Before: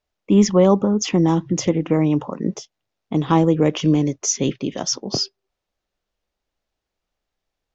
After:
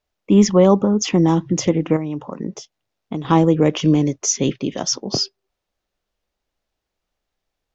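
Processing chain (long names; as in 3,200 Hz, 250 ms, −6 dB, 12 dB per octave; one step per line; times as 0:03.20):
0:01.96–0:03.25: downward compressor 6 to 1, threshold −24 dBFS, peak gain reduction 10 dB
level +1.5 dB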